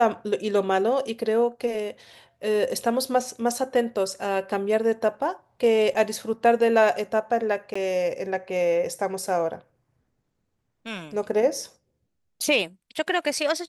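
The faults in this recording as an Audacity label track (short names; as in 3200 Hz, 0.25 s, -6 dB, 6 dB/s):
5.940000	5.950000	gap 6.4 ms
7.740000	7.750000	gap 15 ms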